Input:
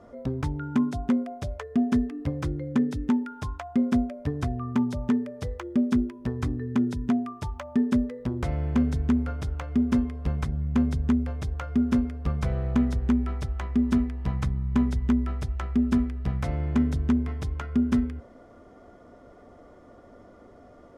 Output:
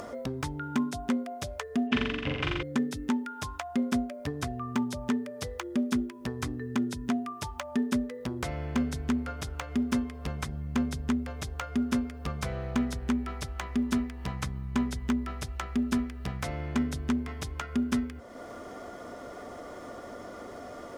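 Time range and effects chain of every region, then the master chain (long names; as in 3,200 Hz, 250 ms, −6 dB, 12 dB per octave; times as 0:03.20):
0:01.87–0:02.63: low-pass with resonance 2,800 Hz, resonance Q 4.2 + flutter between parallel walls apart 7.4 metres, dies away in 1.5 s
whole clip: spectral tilt +2.5 dB per octave; upward compression, threshold −31 dBFS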